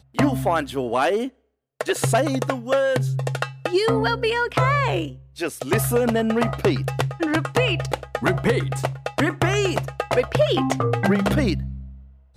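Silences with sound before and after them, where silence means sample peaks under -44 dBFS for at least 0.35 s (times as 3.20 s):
1.29–1.81 s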